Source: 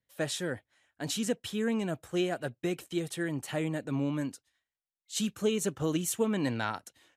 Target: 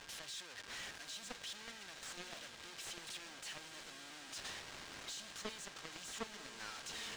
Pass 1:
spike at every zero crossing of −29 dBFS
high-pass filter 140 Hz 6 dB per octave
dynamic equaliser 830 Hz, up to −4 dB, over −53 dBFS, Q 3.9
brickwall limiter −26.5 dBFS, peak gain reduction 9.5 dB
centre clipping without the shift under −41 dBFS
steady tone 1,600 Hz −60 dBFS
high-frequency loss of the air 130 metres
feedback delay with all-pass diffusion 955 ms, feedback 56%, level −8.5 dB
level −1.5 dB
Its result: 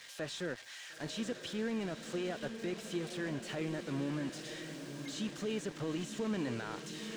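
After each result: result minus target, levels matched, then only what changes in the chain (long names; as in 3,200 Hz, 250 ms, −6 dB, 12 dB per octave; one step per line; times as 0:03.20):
centre clipping without the shift: distortion −13 dB; spike at every zero crossing: distortion −9 dB
change: centre clipping without the shift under −30.5 dBFS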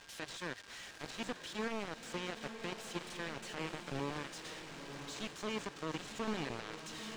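spike at every zero crossing: distortion −9 dB
change: spike at every zero crossing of −19.5 dBFS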